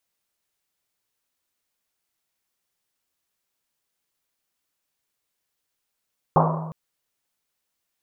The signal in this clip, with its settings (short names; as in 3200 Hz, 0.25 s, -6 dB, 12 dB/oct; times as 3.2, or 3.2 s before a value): Risset drum length 0.36 s, pitch 160 Hz, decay 1.46 s, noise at 810 Hz, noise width 610 Hz, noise 50%